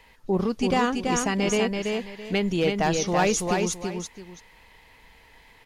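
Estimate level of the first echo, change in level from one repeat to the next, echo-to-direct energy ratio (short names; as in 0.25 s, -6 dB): -4.0 dB, -11.5 dB, -3.5 dB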